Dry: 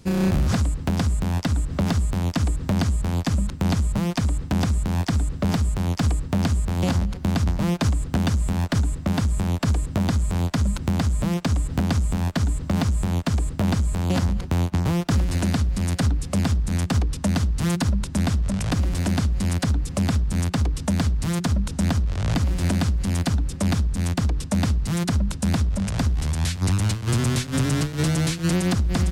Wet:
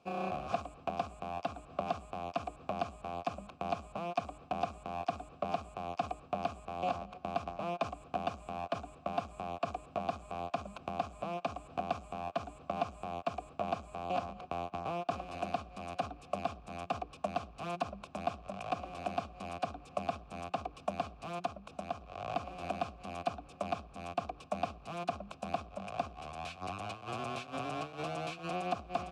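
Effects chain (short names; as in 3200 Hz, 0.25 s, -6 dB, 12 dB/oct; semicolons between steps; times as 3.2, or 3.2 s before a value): 21.45–22.01 compressor 2.5:1, threshold -23 dBFS, peak gain reduction 4 dB; vowel filter a; gain +3.5 dB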